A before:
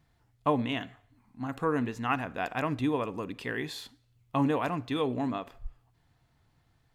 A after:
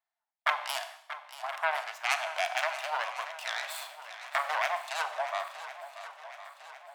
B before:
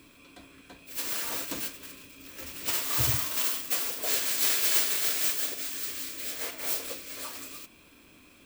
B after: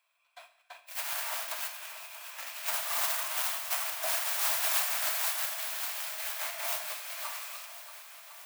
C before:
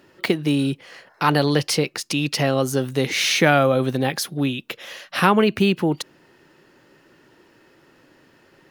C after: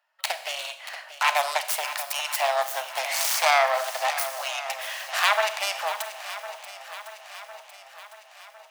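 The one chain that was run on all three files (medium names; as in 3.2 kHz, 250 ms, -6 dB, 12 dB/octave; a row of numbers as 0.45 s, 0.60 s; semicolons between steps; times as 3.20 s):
self-modulated delay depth 0.56 ms; treble shelf 7.9 kHz +9.5 dB; gate -49 dBFS, range -21 dB; Chebyshev high-pass 630 Hz, order 6; Schroeder reverb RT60 0.69 s, combs from 30 ms, DRR 11 dB; in parallel at +2 dB: compression, threshold -32 dBFS; on the sum: treble shelf 3.2 kHz -11 dB; shuffle delay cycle 1055 ms, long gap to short 1.5:1, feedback 50%, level -13 dB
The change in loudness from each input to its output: -1.5 LU, -3.5 LU, -5.0 LU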